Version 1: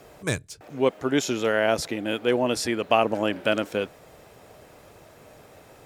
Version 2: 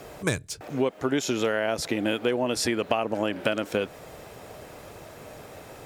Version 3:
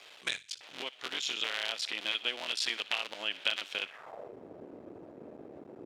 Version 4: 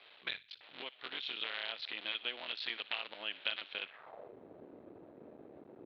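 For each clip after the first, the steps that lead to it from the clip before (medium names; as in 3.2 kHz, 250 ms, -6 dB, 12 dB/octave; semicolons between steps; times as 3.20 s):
compression 12:1, threshold -27 dBFS, peak gain reduction 13.5 dB; trim +6 dB
cycle switcher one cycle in 3, muted; band-pass sweep 3.3 kHz -> 310 Hz, 3.79–4.37 s; feedback echo behind a high-pass 61 ms, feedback 36%, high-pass 2.1 kHz, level -16 dB; trim +5.5 dB
elliptic low-pass 4.1 kHz, stop band 50 dB; trim -5 dB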